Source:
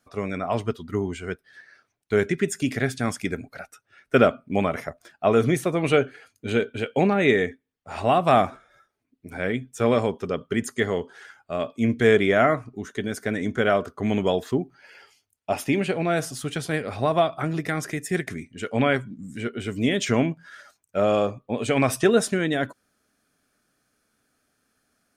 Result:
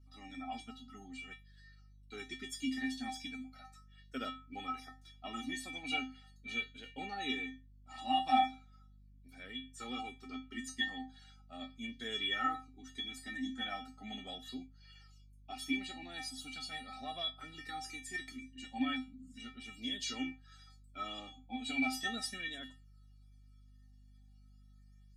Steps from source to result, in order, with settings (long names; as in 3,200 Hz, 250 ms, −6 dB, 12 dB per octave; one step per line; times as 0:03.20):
high-pass filter 200 Hz
parametric band 4,000 Hz +15 dB 1.1 octaves
tuned comb filter 260 Hz, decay 0.24 s, harmonics odd, mix 100%
mains hum 50 Hz, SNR 21 dB
flanger whose copies keep moving one way falling 0.38 Hz
level +3 dB